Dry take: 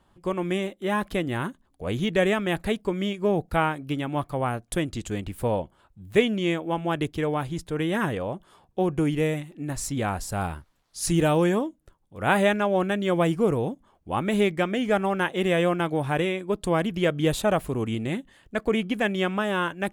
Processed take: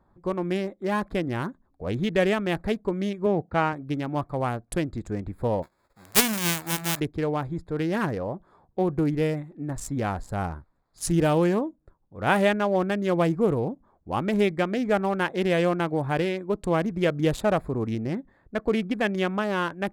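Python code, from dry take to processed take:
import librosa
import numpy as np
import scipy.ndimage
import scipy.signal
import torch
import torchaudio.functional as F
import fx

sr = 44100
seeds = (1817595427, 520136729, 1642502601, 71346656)

y = fx.bandpass_edges(x, sr, low_hz=100.0, high_hz=3000.0, at=(3.26, 3.73))
y = fx.envelope_flatten(y, sr, power=0.1, at=(5.62, 6.99), fade=0.02)
y = fx.high_shelf(y, sr, hz=4800.0, db=-9.0, at=(18.0, 18.61))
y = fx.wiener(y, sr, points=15)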